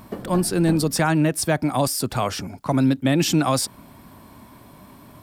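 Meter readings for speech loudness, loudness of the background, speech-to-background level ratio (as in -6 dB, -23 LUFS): -21.5 LUFS, -35.0 LUFS, 13.5 dB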